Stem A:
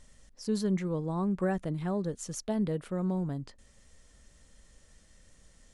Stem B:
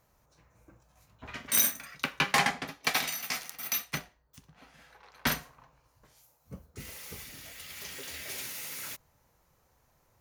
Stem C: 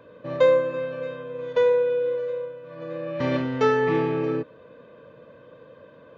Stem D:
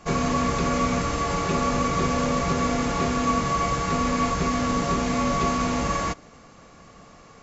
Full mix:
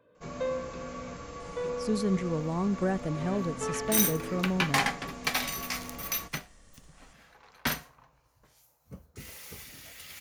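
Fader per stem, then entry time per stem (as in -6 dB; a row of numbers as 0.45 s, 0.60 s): +1.0 dB, -1.0 dB, -15.0 dB, -18.0 dB; 1.40 s, 2.40 s, 0.00 s, 0.15 s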